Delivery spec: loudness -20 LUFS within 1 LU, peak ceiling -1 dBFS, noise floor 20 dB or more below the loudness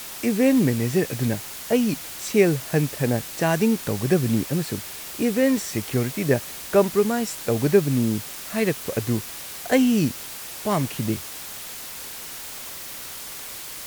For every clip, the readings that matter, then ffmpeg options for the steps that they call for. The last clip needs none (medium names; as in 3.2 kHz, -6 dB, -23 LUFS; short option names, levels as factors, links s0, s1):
noise floor -36 dBFS; noise floor target -44 dBFS; loudness -24.0 LUFS; peak level -5.0 dBFS; loudness target -20.0 LUFS
-> -af "afftdn=nr=8:nf=-36"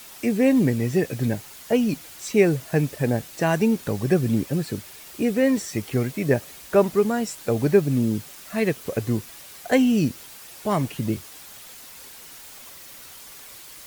noise floor -43 dBFS; noise floor target -44 dBFS
-> -af "afftdn=nr=6:nf=-43"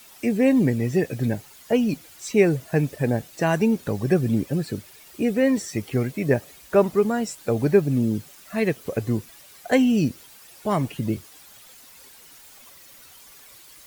noise floor -49 dBFS; loudness -23.5 LUFS; peak level -5.5 dBFS; loudness target -20.0 LUFS
-> -af "volume=1.5"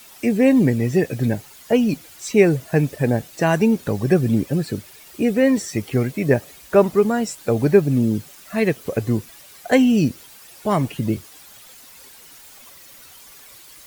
loudness -20.0 LUFS; peak level -2.0 dBFS; noise floor -45 dBFS